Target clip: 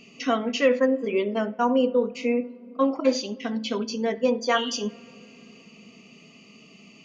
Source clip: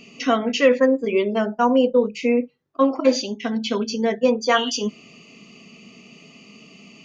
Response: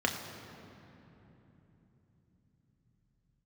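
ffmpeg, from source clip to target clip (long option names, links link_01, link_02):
-filter_complex "[0:a]asplit=2[link_01][link_02];[1:a]atrim=start_sample=2205,lowpass=4000,adelay=66[link_03];[link_02][link_03]afir=irnorm=-1:irlink=0,volume=-27.5dB[link_04];[link_01][link_04]amix=inputs=2:normalize=0,volume=-4.5dB"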